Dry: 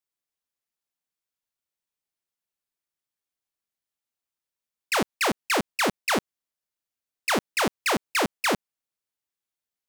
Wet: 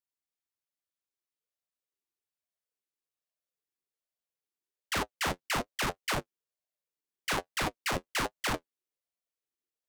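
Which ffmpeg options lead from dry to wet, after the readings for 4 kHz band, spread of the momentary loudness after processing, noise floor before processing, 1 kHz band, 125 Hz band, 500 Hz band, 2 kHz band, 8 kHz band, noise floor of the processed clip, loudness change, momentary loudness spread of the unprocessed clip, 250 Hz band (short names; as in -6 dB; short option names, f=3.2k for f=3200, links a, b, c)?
-6.0 dB, 4 LU, under -85 dBFS, -7.0 dB, -1.5 dB, -9.5 dB, -7.0 dB, -6.5 dB, under -85 dBFS, -7.0 dB, 4 LU, -10.0 dB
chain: -af "asubboost=boost=4.5:cutoff=110,flanger=delay=8.4:depth=3.6:regen=37:speed=1.8:shape=sinusoidal,aeval=exprs='val(0)*sin(2*PI*490*n/s+490*0.3/1.2*sin(2*PI*1.2*n/s))':c=same"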